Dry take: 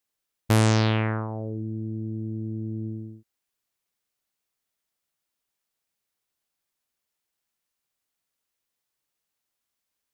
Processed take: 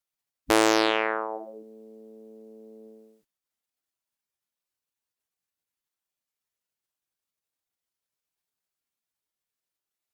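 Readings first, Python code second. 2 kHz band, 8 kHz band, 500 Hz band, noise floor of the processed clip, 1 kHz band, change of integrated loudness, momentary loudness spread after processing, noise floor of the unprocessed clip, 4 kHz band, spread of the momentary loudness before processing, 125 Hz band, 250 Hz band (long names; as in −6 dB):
+4.5 dB, can't be measured, +4.5 dB, below −85 dBFS, +5.0 dB, +3.0 dB, 14 LU, −83 dBFS, +4.0 dB, 13 LU, below −25 dB, −2.5 dB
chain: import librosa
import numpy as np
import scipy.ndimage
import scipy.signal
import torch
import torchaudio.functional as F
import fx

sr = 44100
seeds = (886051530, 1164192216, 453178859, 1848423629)

y = fx.spec_gate(x, sr, threshold_db=-10, keep='weak')
y = fx.cheby_harmonics(y, sr, harmonics=(2, 4), levels_db=(-14, -27), full_scale_db=-9.5)
y = y * 10.0 ** (5.0 / 20.0)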